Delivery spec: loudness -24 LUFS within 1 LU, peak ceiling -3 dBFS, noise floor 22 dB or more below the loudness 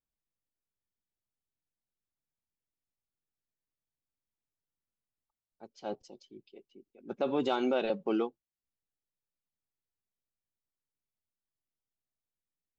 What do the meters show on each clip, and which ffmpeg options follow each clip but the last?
loudness -32.5 LUFS; peak level -18.0 dBFS; loudness target -24.0 LUFS
-> -af "volume=2.66"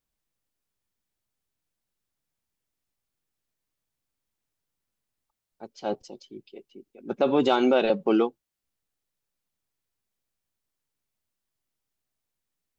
loudness -24.0 LUFS; peak level -9.5 dBFS; noise floor -85 dBFS

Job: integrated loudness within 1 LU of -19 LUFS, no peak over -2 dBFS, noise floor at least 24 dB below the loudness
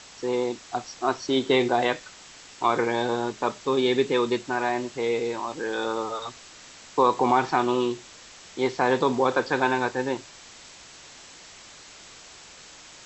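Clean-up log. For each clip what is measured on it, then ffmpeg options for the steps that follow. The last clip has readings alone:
noise floor -48 dBFS; noise floor target -50 dBFS; loudness -25.5 LUFS; peak level -7.0 dBFS; loudness target -19.0 LUFS
-> -af "afftdn=nr=6:nf=-48"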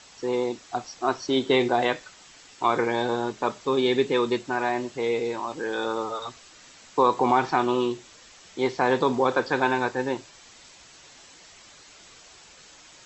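noise floor -51 dBFS; loudness -25.5 LUFS; peak level -7.0 dBFS; loudness target -19.0 LUFS
-> -af "volume=2.11,alimiter=limit=0.794:level=0:latency=1"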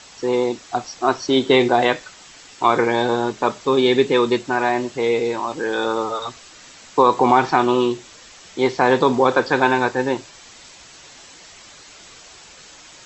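loudness -19.0 LUFS; peak level -2.0 dBFS; noise floor -44 dBFS

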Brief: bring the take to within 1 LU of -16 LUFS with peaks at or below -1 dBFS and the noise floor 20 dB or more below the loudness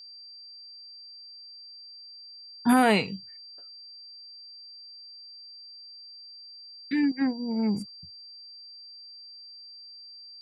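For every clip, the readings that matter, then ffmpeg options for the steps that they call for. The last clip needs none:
steady tone 4.7 kHz; tone level -44 dBFS; loudness -26.0 LUFS; peak level -9.0 dBFS; loudness target -16.0 LUFS
-> -af "bandreject=f=4700:w=30"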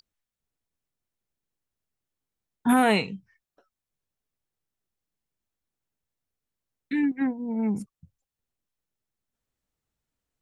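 steady tone not found; loudness -25.5 LUFS; peak level -9.0 dBFS; loudness target -16.0 LUFS
-> -af "volume=2.99,alimiter=limit=0.891:level=0:latency=1"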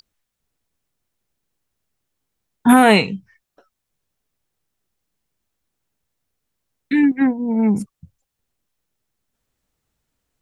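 loudness -16.5 LUFS; peak level -1.0 dBFS; noise floor -80 dBFS

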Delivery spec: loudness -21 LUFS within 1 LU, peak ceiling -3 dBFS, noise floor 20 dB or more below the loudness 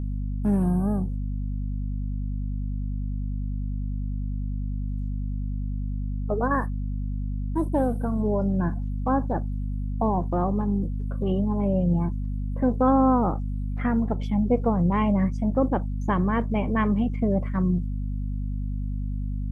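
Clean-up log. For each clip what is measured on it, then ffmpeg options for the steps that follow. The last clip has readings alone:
hum 50 Hz; highest harmonic 250 Hz; hum level -26 dBFS; loudness -26.5 LUFS; peak level -10.0 dBFS; loudness target -21.0 LUFS
-> -af "bandreject=f=50:t=h:w=4,bandreject=f=100:t=h:w=4,bandreject=f=150:t=h:w=4,bandreject=f=200:t=h:w=4,bandreject=f=250:t=h:w=4"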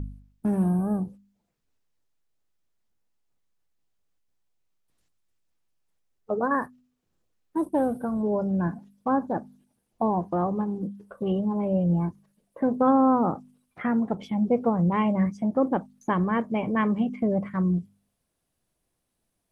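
hum not found; loudness -26.0 LUFS; peak level -11.0 dBFS; loudness target -21.0 LUFS
-> -af "volume=1.78"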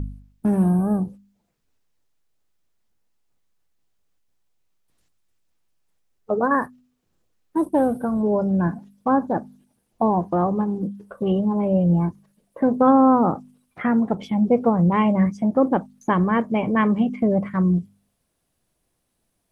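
loudness -21.0 LUFS; peak level -6.0 dBFS; noise floor -73 dBFS

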